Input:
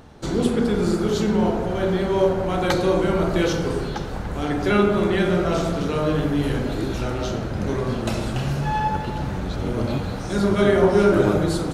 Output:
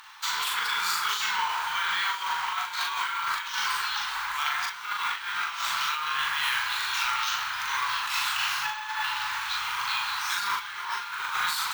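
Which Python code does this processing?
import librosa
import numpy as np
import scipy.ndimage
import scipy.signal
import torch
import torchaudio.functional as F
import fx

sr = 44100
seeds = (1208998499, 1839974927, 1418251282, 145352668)

p1 = scipy.signal.sosfilt(scipy.signal.ellip(4, 1.0, 40, 960.0, 'highpass', fs=sr, output='sos'), x)
p2 = fx.peak_eq(p1, sr, hz=2900.0, db=3.0, octaves=1.5)
p3 = fx.over_compress(p2, sr, threshold_db=-34.0, ratio=-0.5)
p4 = fx.doubler(p3, sr, ms=40.0, db=-2.5)
p5 = p4 + fx.echo_diffused(p4, sr, ms=1240, feedback_pct=62, wet_db=-13.5, dry=0)
p6 = np.repeat(p5[::2], 2)[:len(p5)]
y = F.gain(torch.from_numpy(p6), 3.5).numpy()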